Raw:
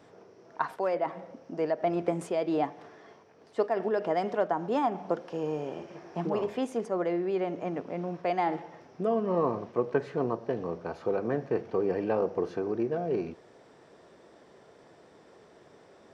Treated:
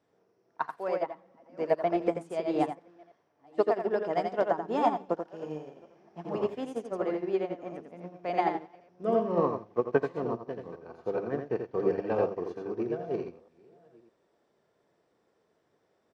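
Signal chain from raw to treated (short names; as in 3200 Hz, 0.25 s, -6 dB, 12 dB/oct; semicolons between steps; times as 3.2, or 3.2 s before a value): reverse delay 0.609 s, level -11.5 dB; echo 85 ms -3 dB; upward expander 2.5:1, over -36 dBFS; gain +3.5 dB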